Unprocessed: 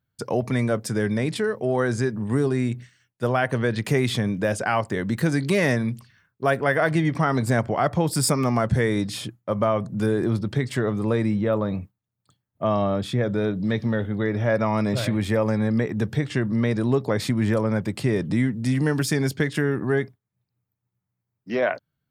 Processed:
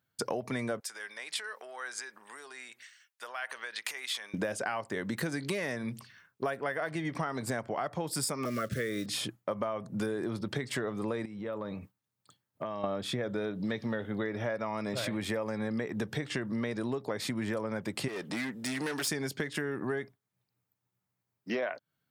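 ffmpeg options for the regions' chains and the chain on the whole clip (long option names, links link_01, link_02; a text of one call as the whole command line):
ffmpeg -i in.wav -filter_complex "[0:a]asettb=1/sr,asplit=3[link_01][link_02][link_03];[link_01]atrim=end=0.804[link_04];[link_02]atrim=start=0.8:end=4.34,asetpts=PTS-STARTPTS,afade=type=in:duration=0.004:curve=qsin,afade=type=out:start_time=3.536:duration=0.004:curve=qsin,acompressor=threshold=-29dB:ratio=6:attack=3.2:release=140:knee=1:detection=peak,highpass=1200[link_05];[link_03]atrim=start=4.336[link_06];[link_04][link_05]acrossfade=duration=0.004:curve1=hsin:curve2=qsin[link_07];[link_07][link_06]acrossfade=duration=0.004:curve1=qsin:curve2=hsin,asettb=1/sr,asplit=3[link_08][link_09][link_10];[link_08]atrim=end=8.454[link_11];[link_09]atrim=start=8.45:end=9.06,asetpts=PTS-STARTPTS,afade=type=in:duration=0.004:curve=qsin,afade=type=out:start_time=0.606:duration=0.004:curve=qsin,acrusher=bits=6:mode=log:mix=0:aa=0.000001,asuperstop=centerf=860:order=20:qfactor=1.8[link_12];[link_10]atrim=start=9.056[link_13];[link_11][link_12]acrossfade=duration=0.004:curve1=hsin:curve2=qsin[link_14];[link_14][link_13]acrossfade=duration=0.004:curve1=qsin:curve2=hsin,asettb=1/sr,asplit=3[link_15][link_16][link_17];[link_15]atrim=end=11.254[link_18];[link_16]atrim=start=11.25:end=12.84,asetpts=PTS-STARTPTS,afade=type=in:duration=0.004:curve=qsin,afade=type=out:start_time=1.586:duration=0.004:curve=qsin,bandreject=frequency=700:width=9.9,acompressor=threshold=-32dB:ratio=12:attack=3.2:release=140:knee=1:detection=peak[link_19];[link_17]atrim=start=12.836[link_20];[link_18][link_19]acrossfade=duration=0.004:curve1=hsin:curve2=qsin[link_21];[link_21][link_20]acrossfade=duration=0.004:curve1=qsin:curve2=hsin,asettb=1/sr,asplit=3[link_22][link_23][link_24];[link_22]atrim=end=18.084[link_25];[link_23]atrim=start=18.08:end=19.08,asetpts=PTS-STARTPTS,afade=type=in:duration=0.004:curve=qsin,afade=type=out:start_time=0.996:duration=0.004:curve=qsin,highpass=frequency=580:poles=1,asoftclip=type=hard:threshold=-28dB[link_26];[link_24]atrim=start=19.076[link_27];[link_25][link_26]acrossfade=duration=0.004:curve1=hsin:curve2=qsin[link_28];[link_28][link_27]acrossfade=duration=0.004:curve1=qsin:curve2=hsin,highpass=frequency=360:poles=1,acompressor=threshold=-33dB:ratio=10,volume=3dB" out.wav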